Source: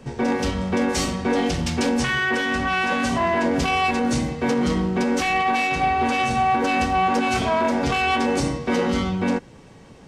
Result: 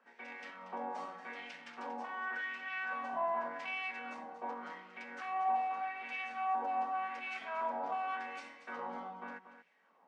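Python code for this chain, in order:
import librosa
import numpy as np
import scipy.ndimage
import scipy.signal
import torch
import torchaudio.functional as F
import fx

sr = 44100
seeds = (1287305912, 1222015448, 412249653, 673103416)

y = fx.filter_lfo_bandpass(x, sr, shape='sine', hz=0.86, low_hz=850.0, high_hz=2300.0, q=3.0)
y = scipy.signal.sosfilt(scipy.signal.cheby1(6, 6, 170.0, 'highpass', fs=sr, output='sos'), y)
y = y + 10.0 ** (-11.5 / 20.0) * np.pad(y, (int(234 * sr / 1000.0), 0))[:len(y)]
y = F.gain(torch.from_numpy(y), -6.5).numpy()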